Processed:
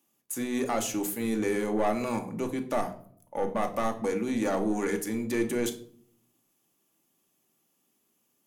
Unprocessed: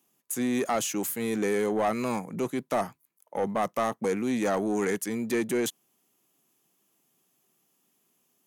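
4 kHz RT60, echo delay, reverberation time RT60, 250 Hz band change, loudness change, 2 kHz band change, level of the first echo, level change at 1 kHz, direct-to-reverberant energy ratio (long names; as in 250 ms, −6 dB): 0.40 s, no echo audible, 0.55 s, −0.5 dB, −1.0 dB, −2.0 dB, no echo audible, −1.5 dB, 4.5 dB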